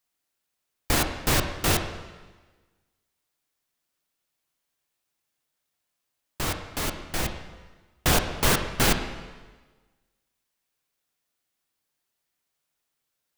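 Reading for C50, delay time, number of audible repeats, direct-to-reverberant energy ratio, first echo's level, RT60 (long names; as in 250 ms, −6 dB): 7.5 dB, no echo audible, no echo audible, 5.0 dB, no echo audible, 1.3 s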